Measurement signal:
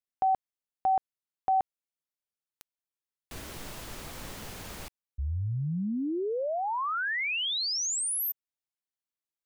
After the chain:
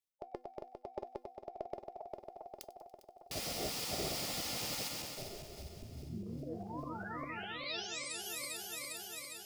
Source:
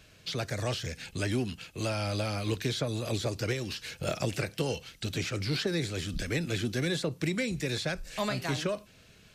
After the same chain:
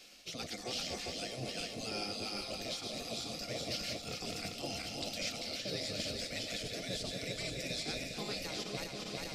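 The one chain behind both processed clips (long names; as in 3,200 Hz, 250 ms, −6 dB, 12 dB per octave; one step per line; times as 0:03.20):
feedback delay that plays each chunk backwards 201 ms, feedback 75%, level −5 dB
thirty-one-band graphic EQ 400 Hz +11 dB, 630 Hz +11 dB, 1,000 Hz −10 dB, 1,600 Hz −12 dB, 5,000 Hz +9 dB
reversed playback
downward compressor 6 to 1, threshold −33 dBFS
reversed playback
tuned comb filter 350 Hz, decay 0.16 s, harmonics all, mix 60%
on a send: delay with a high-pass on its return 95 ms, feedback 68%, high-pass 1,800 Hz, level −19.5 dB
on the sum: gate on every frequency bin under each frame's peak −10 dB weak
hum removal 249.2 Hz, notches 3
level +9.5 dB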